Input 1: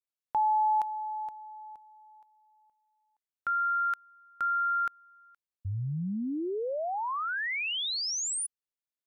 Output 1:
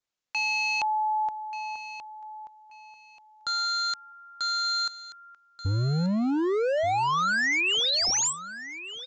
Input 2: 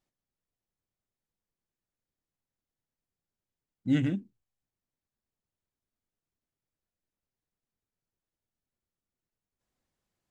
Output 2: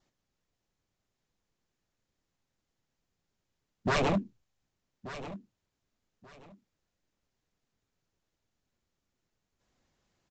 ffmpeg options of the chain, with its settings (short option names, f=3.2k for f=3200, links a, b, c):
-af "adynamicequalizer=threshold=0.00178:dfrequency=2500:dqfactor=7.6:tfrequency=2500:tqfactor=7.6:attack=5:release=100:ratio=0.375:range=2:mode=cutabove:tftype=bell,aresample=16000,aeval=exprs='0.0282*(abs(mod(val(0)/0.0282+3,4)-2)-1)':c=same,aresample=44100,aecho=1:1:1183|2366:0.2|0.0439,volume=9dB"